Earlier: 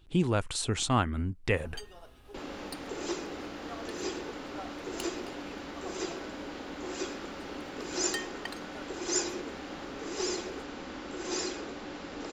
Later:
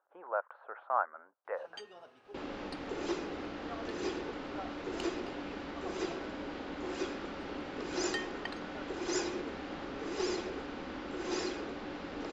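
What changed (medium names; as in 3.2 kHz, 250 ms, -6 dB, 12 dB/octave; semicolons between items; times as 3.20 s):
speech: add elliptic band-pass 560–1500 Hz, stop band 70 dB; master: add distance through air 130 m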